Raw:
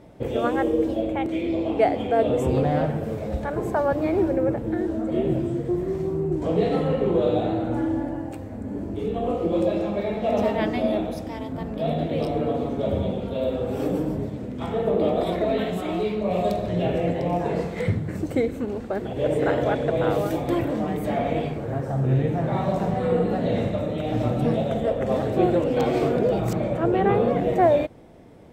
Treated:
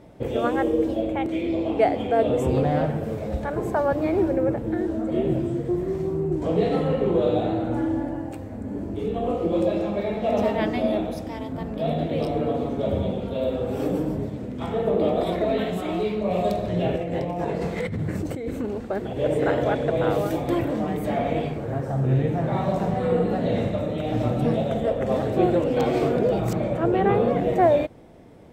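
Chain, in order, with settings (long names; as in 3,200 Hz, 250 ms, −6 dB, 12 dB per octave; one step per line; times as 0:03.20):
0:16.96–0:18.67: compressor whose output falls as the input rises −27 dBFS, ratio −1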